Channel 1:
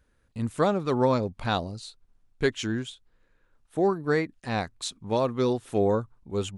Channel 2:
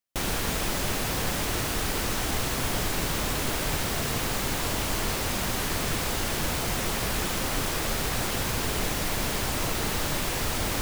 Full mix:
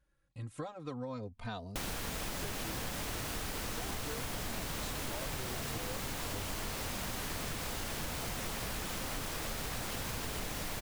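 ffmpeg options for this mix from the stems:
-filter_complex "[0:a]acompressor=threshold=0.0447:ratio=6,asplit=2[s0][s1];[s1]adelay=3.1,afreqshift=-0.38[s2];[s0][s2]amix=inputs=2:normalize=1,volume=0.501[s3];[1:a]adelay=1600,volume=0.596[s4];[s3][s4]amix=inputs=2:normalize=0,equalizer=f=370:w=6.7:g=-4,acompressor=threshold=0.0178:ratio=6"

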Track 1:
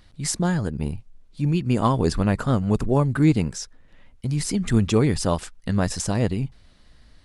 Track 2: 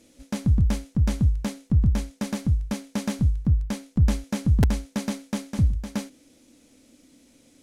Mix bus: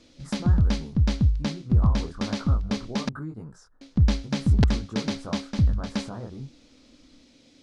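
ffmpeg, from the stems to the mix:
-filter_complex "[0:a]flanger=delay=18:depth=7.8:speed=1.2,highshelf=f=1800:t=q:w=3:g=-11,acompressor=threshold=0.0501:ratio=4,volume=0.422[s0];[1:a]lowpass=f=4500:t=q:w=2.1,volume=1,asplit=3[s1][s2][s3];[s1]atrim=end=3.09,asetpts=PTS-STARTPTS,afade=t=out:st=3.086:d=0.004:c=hsin[s4];[s2]atrim=start=3.09:end=3.81,asetpts=PTS-STARTPTS,volume=0[s5];[s3]atrim=start=3.81,asetpts=PTS-STARTPTS,afade=t=in:d=0.004:c=hsin[s6];[s4][s5][s6]concat=n=3:v=0:a=1[s7];[s0][s7]amix=inputs=2:normalize=0"

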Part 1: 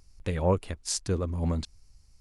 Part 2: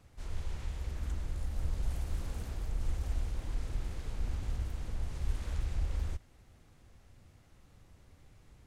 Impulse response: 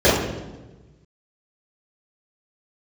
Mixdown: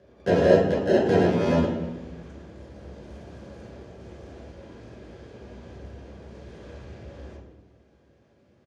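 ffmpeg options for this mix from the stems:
-filter_complex "[0:a]acompressor=threshold=0.0316:ratio=6,acrusher=samples=38:mix=1:aa=0.000001,volume=0.944,asplit=2[s0][s1];[s1]volume=0.266[s2];[1:a]adelay=1200,volume=0.422,asplit=2[s3][s4];[s4]volume=0.158[s5];[2:a]atrim=start_sample=2205[s6];[s2][s5]amix=inputs=2:normalize=0[s7];[s7][s6]afir=irnorm=-1:irlink=0[s8];[s0][s3][s8]amix=inputs=3:normalize=0,highpass=210,lowpass=5700"

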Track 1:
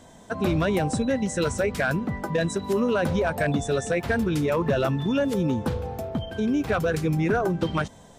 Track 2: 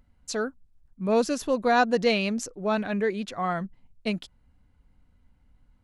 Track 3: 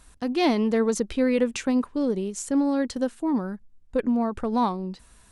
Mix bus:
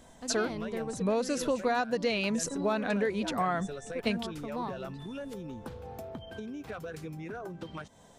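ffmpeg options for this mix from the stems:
-filter_complex "[0:a]acompressor=threshold=0.0282:ratio=6,volume=0.531[s0];[1:a]volume=1.41[s1];[2:a]acontrast=39,volume=0.126[s2];[s0][s1][s2]amix=inputs=3:normalize=0,lowshelf=f=240:g=-4.5,acompressor=threshold=0.0562:ratio=12"

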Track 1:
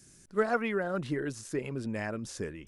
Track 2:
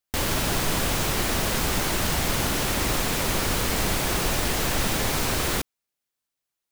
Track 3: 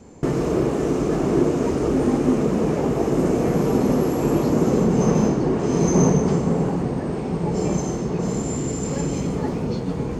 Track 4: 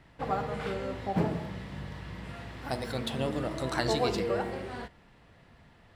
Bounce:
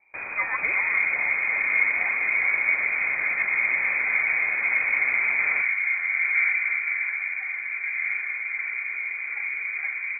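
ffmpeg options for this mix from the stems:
-filter_complex "[0:a]volume=0.944[s0];[1:a]asoftclip=type=tanh:threshold=0.0841,volume=0.562[s1];[2:a]lowpass=1700,aecho=1:1:2.9:0.41,adelay=400,volume=0.531[s2];[3:a]adelay=100,volume=0.188[s3];[s0][s1][s2][s3]amix=inputs=4:normalize=0,lowpass=f=2100:t=q:w=0.5098,lowpass=f=2100:t=q:w=0.6013,lowpass=f=2100:t=q:w=0.9,lowpass=f=2100:t=q:w=2.563,afreqshift=-2500"

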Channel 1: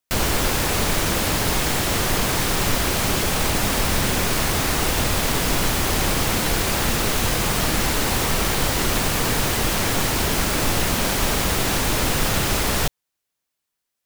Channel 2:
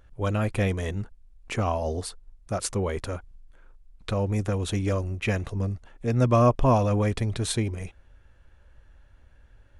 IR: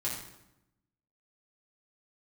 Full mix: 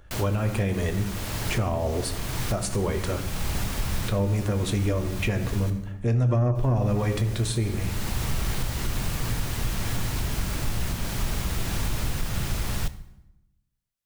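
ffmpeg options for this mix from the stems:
-filter_complex "[0:a]asubboost=boost=3:cutoff=200,volume=0.282,asplit=3[s0][s1][s2];[s0]atrim=end=5.7,asetpts=PTS-STARTPTS,afade=t=out:st=5.696:d=0.004:c=hsin[s3];[s1]atrim=start=5.7:end=6.55,asetpts=PTS-STARTPTS,volume=0[s4];[s2]atrim=start=6.55,asetpts=PTS-STARTPTS,afade=t=in:d=0.004:c=hsin[s5];[s3][s4][s5]concat=n=3:v=0:a=1,asplit=2[s6][s7];[s7]volume=0.178[s8];[1:a]volume=1.33,asplit=3[s9][s10][s11];[s10]volume=0.422[s12];[s11]apad=whole_len=619901[s13];[s6][s13]sidechaincompress=threshold=0.0251:ratio=4:attack=48:release=628[s14];[2:a]atrim=start_sample=2205[s15];[s8][s12]amix=inputs=2:normalize=0[s16];[s16][s15]afir=irnorm=-1:irlink=0[s17];[s14][s9][s17]amix=inputs=3:normalize=0,acrossover=split=480[s18][s19];[s19]acompressor=threshold=0.0562:ratio=5[s20];[s18][s20]amix=inputs=2:normalize=0,asoftclip=type=tanh:threshold=0.398,alimiter=limit=0.15:level=0:latency=1:release=360"

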